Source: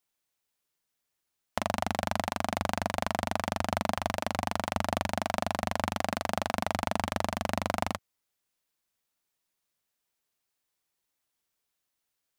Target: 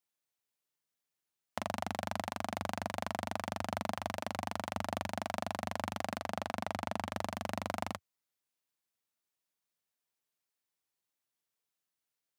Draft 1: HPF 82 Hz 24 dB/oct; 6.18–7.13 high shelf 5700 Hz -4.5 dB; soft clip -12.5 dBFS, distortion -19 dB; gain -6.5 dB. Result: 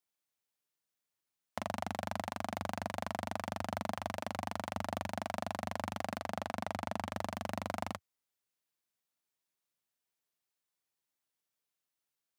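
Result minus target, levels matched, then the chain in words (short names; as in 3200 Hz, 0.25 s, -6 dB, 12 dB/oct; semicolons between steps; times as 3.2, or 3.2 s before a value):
soft clip: distortion +15 dB
HPF 82 Hz 24 dB/oct; 6.18–7.13 high shelf 5700 Hz -4.5 dB; soft clip -4 dBFS, distortion -33 dB; gain -6.5 dB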